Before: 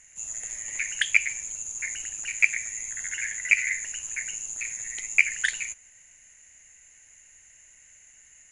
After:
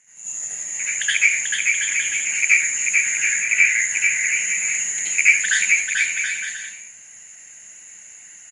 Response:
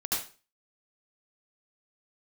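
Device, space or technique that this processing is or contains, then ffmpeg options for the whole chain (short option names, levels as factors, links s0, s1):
far-field microphone of a smart speaker: -filter_complex "[0:a]asettb=1/sr,asplit=3[s0][s1][s2];[s0]atrim=end=3.314[s3];[s1]atrim=start=3.31:end=3.71,asetpts=PTS-STARTPTS,afade=t=in:d=0.004:c=qsin,afade=t=out:st=0.396:d=0.004:c=qsin,acrossover=split=3900[s4][s5];[s5]acompressor=threshold=0.00562:ratio=4:attack=1:release=60[s6];[s4][s6]amix=inputs=2:normalize=0[s7];[s2]atrim=start=3.706[s8];[s3][s7]acrossfade=d=0.004:c1=hsin:c2=qsin[s9];[s9][s8]acrossfade=d=0.004:c1=qsin:c2=hsin,aecho=1:1:440|726|911.9|1033|1111:0.631|0.398|0.251|0.158|0.1[s10];[1:a]atrim=start_sample=2205[s11];[s10][s11]afir=irnorm=-1:irlink=0,highpass=f=110:w=0.5412,highpass=f=110:w=1.3066,dynaudnorm=f=550:g=7:m=2.24,volume=0.891" -ar 48000 -c:a libopus -b:a 48k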